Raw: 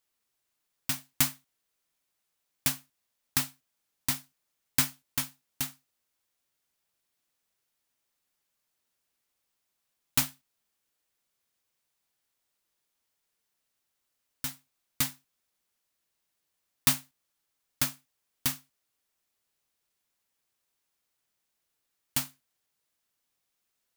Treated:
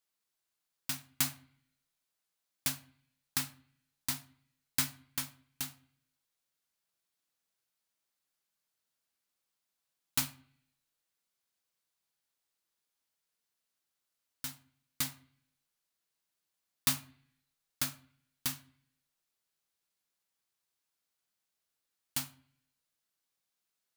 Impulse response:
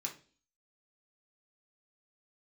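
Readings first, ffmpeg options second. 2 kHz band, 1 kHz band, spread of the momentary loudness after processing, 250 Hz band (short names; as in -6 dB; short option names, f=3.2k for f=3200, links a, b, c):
-5.5 dB, -5.5 dB, 11 LU, -6.0 dB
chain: -filter_complex "[0:a]asplit=2[a][b];[1:a]atrim=start_sample=2205,asetrate=26901,aresample=44100[c];[b][c]afir=irnorm=-1:irlink=0,volume=-9.5dB[d];[a][d]amix=inputs=2:normalize=0,volume=-7.5dB"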